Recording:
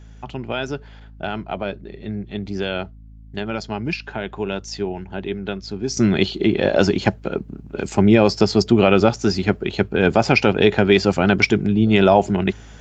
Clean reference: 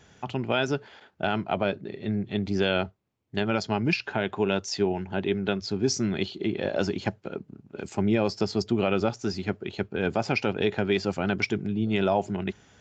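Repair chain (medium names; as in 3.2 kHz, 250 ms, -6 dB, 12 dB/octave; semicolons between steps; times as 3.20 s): de-hum 53.9 Hz, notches 5; trim 0 dB, from 5.97 s -10.5 dB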